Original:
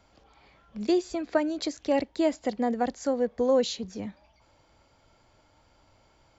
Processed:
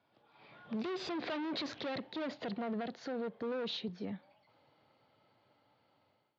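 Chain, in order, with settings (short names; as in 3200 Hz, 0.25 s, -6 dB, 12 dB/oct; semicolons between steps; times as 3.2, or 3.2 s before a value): Doppler pass-by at 1.37, 16 m/s, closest 5.1 m; one-sided clip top -47.5 dBFS, bottom -36.5 dBFS; AGC gain up to 13.5 dB; elliptic band-pass 120–4000 Hz, stop band 40 dB; limiter -32 dBFS, peak gain reduction 11.5 dB; gain +1.5 dB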